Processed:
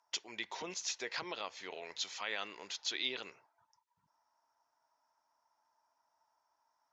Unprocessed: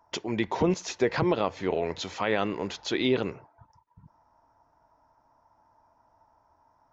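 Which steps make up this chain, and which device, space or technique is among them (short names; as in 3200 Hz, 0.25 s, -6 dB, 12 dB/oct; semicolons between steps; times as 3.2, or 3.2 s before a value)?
piezo pickup straight into a mixer (LPF 6400 Hz 12 dB/oct; differentiator); gain +3.5 dB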